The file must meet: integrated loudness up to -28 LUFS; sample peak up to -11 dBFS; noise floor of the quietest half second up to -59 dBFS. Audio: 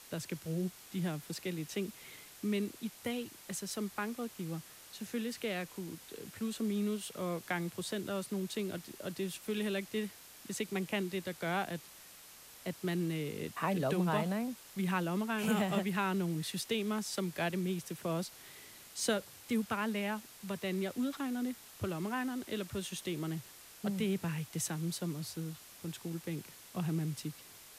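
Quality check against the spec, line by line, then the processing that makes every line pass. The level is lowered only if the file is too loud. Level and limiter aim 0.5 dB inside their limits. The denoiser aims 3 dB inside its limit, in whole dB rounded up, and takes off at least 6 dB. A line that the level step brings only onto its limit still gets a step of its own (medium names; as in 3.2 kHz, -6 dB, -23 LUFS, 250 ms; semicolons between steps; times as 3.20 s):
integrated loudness -37.0 LUFS: pass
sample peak -19.5 dBFS: pass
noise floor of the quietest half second -55 dBFS: fail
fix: noise reduction 7 dB, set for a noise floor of -55 dBFS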